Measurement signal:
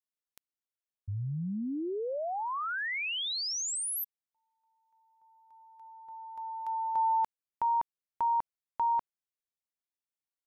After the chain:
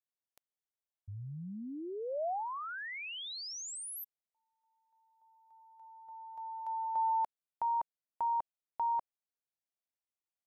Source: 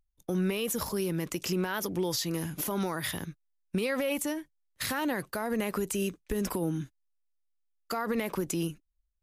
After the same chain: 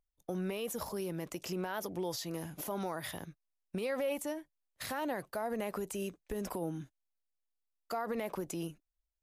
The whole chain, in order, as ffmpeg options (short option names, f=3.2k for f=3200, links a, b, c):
-af "equalizer=f=680:t=o:w=1:g=9,volume=-9dB"